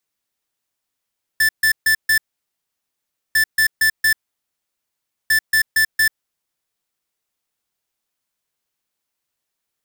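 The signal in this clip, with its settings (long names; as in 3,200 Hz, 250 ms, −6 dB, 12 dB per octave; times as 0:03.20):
beeps in groups square 1,760 Hz, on 0.09 s, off 0.14 s, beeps 4, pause 1.17 s, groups 3, −14.5 dBFS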